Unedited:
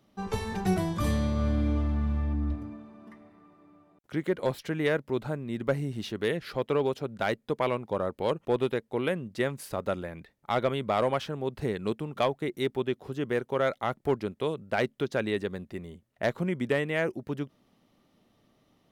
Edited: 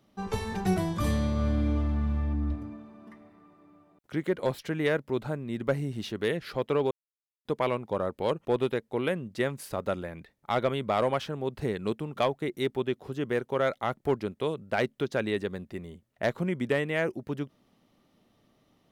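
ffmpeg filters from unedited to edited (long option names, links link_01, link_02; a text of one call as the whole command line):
ffmpeg -i in.wav -filter_complex "[0:a]asplit=3[link_01][link_02][link_03];[link_01]atrim=end=6.91,asetpts=PTS-STARTPTS,afade=type=out:start_time=6.906:duration=0.004:curve=hsin[link_04];[link_02]atrim=start=6.91:end=7.45,asetpts=PTS-STARTPTS,volume=0[link_05];[link_03]atrim=start=7.45,asetpts=PTS-STARTPTS,afade=type=in:duration=0.004:curve=hsin[link_06];[link_04][link_05][link_06]concat=n=3:v=0:a=1" out.wav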